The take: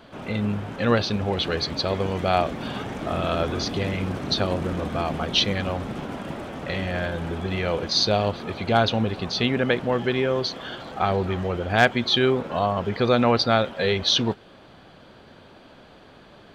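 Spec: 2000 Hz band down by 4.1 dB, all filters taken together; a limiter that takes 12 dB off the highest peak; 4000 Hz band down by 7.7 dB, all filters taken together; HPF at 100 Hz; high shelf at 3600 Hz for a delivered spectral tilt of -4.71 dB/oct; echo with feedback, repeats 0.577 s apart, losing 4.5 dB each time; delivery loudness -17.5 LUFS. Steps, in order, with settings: HPF 100 Hz; bell 2000 Hz -3 dB; high shelf 3600 Hz -5.5 dB; bell 4000 Hz -5 dB; limiter -16.5 dBFS; feedback echo 0.577 s, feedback 60%, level -4.5 dB; gain +9.5 dB

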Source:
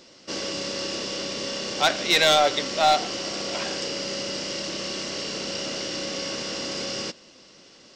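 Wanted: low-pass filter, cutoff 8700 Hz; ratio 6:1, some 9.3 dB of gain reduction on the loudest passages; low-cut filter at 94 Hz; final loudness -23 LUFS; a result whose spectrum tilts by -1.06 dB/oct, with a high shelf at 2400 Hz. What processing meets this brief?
HPF 94 Hz; LPF 8700 Hz; high shelf 2400 Hz +5.5 dB; compressor 6:1, threshold -23 dBFS; gain +3 dB

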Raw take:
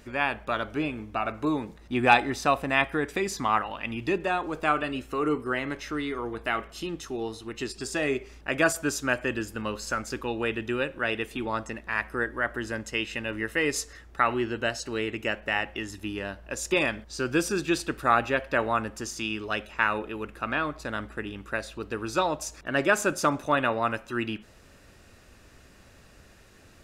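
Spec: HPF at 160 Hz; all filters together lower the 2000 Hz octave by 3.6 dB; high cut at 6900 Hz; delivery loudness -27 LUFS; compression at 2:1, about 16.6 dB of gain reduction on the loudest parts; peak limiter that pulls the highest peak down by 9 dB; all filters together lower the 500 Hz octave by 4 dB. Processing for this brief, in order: HPF 160 Hz; LPF 6900 Hz; bell 500 Hz -5 dB; bell 2000 Hz -4.5 dB; compressor 2:1, threshold -48 dBFS; gain +18 dB; limiter -13.5 dBFS

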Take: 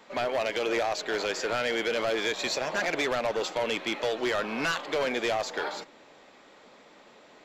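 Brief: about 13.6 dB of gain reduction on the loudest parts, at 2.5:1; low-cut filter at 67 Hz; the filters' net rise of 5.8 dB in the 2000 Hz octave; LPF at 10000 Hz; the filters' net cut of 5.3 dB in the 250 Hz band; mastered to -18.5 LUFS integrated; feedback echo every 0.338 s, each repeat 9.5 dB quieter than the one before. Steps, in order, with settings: HPF 67 Hz; LPF 10000 Hz; bell 250 Hz -8 dB; bell 2000 Hz +7.5 dB; compressor 2.5:1, threshold -43 dBFS; feedback echo 0.338 s, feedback 33%, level -9.5 dB; gain +20 dB

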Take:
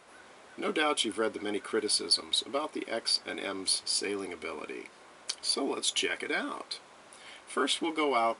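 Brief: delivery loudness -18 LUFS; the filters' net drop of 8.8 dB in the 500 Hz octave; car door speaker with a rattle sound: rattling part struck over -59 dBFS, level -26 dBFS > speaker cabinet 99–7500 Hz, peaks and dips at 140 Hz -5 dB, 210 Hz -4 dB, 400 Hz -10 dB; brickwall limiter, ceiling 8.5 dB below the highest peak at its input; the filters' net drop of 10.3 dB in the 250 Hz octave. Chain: bell 250 Hz -8 dB; bell 500 Hz -4 dB; limiter -21.5 dBFS; rattling part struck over -59 dBFS, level -26 dBFS; speaker cabinet 99–7500 Hz, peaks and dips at 140 Hz -5 dB, 210 Hz -4 dB, 400 Hz -10 dB; gain +16.5 dB

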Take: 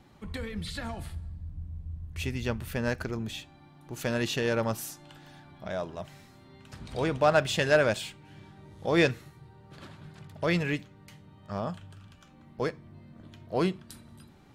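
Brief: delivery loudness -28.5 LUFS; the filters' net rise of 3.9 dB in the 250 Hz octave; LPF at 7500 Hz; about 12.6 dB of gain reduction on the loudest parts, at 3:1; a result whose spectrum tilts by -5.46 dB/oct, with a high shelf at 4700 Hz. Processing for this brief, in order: LPF 7500 Hz; bell 250 Hz +5.5 dB; high shelf 4700 Hz -6 dB; compressor 3:1, threshold -34 dBFS; gain +10.5 dB

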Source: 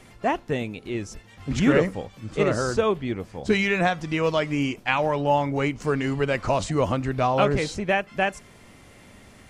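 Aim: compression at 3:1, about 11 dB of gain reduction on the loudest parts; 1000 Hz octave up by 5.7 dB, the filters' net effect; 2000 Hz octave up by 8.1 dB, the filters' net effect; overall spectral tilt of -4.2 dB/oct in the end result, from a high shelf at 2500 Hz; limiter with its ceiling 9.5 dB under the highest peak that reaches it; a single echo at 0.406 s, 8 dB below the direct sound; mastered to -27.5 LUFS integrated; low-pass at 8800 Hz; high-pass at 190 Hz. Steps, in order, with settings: HPF 190 Hz; LPF 8800 Hz; bell 1000 Hz +5.5 dB; bell 2000 Hz +6.5 dB; high shelf 2500 Hz +4 dB; compressor 3:1, threshold -27 dBFS; limiter -19 dBFS; echo 0.406 s -8 dB; gain +3 dB

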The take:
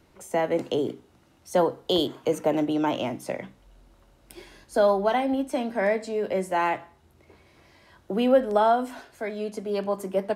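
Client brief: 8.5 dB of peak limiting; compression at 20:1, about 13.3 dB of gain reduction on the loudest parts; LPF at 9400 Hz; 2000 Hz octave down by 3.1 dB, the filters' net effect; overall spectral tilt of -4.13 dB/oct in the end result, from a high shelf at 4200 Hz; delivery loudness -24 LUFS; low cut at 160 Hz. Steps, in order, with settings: HPF 160 Hz; LPF 9400 Hz; bell 2000 Hz -5.5 dB; high shelf 4200 Hz +8 dB; compressor 20:1, threshold -27 dBFS; gain +11 dB; limiter -14.5 dBFS

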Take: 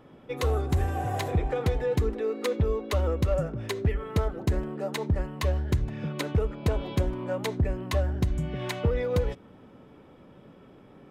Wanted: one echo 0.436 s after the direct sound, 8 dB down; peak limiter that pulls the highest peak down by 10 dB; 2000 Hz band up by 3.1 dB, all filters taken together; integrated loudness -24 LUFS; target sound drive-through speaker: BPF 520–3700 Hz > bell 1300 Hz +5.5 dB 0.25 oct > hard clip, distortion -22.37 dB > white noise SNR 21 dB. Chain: bell 2000 Hz +3.5 dB; limiter -25 dBFS; BPF 520–3700 Hz; bell 1300 Hz +5.5 dB 0.25 oct; echo 0.436 s -8 dB; hard clip -30.5 dBFS; white noise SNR 21 dB; gain +15 dB

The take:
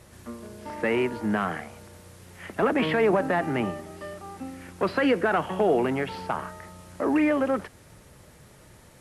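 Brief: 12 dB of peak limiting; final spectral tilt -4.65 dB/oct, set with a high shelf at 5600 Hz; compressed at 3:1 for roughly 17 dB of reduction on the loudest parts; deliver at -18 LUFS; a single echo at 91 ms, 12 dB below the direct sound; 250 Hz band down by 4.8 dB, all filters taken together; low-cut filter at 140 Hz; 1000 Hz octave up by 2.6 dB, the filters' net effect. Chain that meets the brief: HPF 140 Hz; bell 250 Hz -6 dB; bell 1000 Hz +4 dB; high shelf 5600 Hz -4.5 dB; compressor 3:1, threshold -43 dBFS; limiter -37 dBFS; echo 91 ms -12 dB; gain +28.5 dB

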